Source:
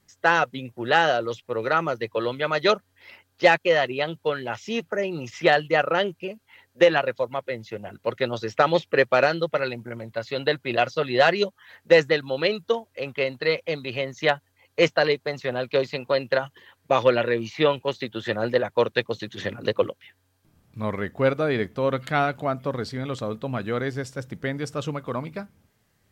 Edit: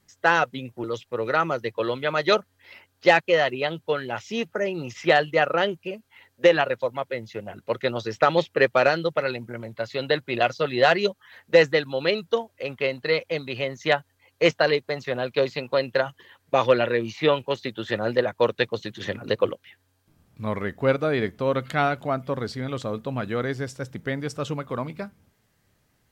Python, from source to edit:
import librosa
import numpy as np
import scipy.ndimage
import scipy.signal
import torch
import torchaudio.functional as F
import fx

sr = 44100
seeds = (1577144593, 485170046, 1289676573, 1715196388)

y = fx.edit(x, sr, fx.cut(start_s=0.84, length_s=0.37), tone=tone)